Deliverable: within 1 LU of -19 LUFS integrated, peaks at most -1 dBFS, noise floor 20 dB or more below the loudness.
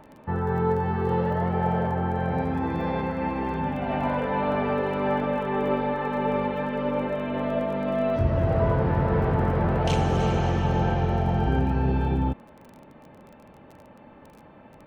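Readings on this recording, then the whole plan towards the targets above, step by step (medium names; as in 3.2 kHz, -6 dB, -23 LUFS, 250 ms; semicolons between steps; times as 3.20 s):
tick rate 23 per s; loudness -25.5 LUFS; peak level -10.5 dBFS; loudness target -19.0 LUFS
-> de-click; trim +6.5 dB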